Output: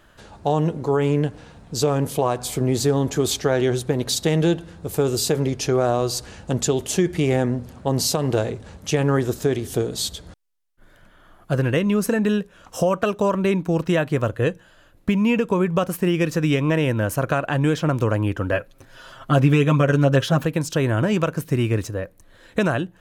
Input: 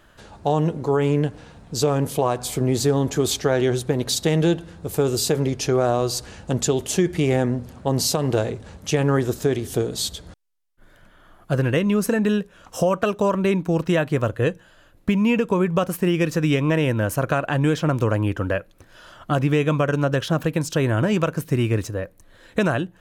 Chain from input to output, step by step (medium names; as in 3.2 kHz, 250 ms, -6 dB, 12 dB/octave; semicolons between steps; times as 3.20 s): 18.52–20.45 s: comb 7.5 ms, depth 85%